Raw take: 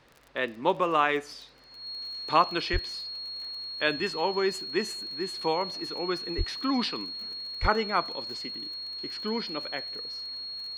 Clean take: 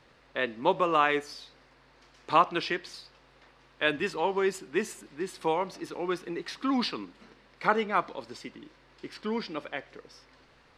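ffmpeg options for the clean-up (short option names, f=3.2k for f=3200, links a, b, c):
-filter_complex "[0:a]adeclick=t=4,bandreject=f=4.3k:w=30,asplit=3[a][b][c];[a]afade=t=out:st=2.72:d=0.02[d];[b]highpass=f=140:w=0.5412,highpass=f=140:w=1.3066,afade=t=in:st=2.72:d=0.02,afade=t=out:st=2.84:d=0.02[e];[c]afade=t=in:st=2.84:d=0.02[f];[d][e][f]amix=inputs=3:normalize=0,asplit=3[g][h][i];[g]afade=t=out:st=6.37:d=0.02[j];[h]highpass=f=140:w=0.5412,highpass=f=140:w=1.3066,afade=t=in:st=6.37:d=0.02,afade=t=out:st=6.49:d=0.02[k];[i]afade=t=in:st=6.49:d=0.02[l];[j][k][l]amix=inputs=3:normalize=0,asplit=3[m][n][o];[m]afade=t=out:st=7.61:d=0.02[p];[n]highpass=f=140:w=0.5412,highpass=f=140:w=1.3066,afade=t=in:st=7.61:d=0.02,afade=t=out:st=7.73:d=0.02[q];[o]afade=t=in:st=7.73:d=0.02[r];[p][q][r]amix=inputs=3:normalize=0"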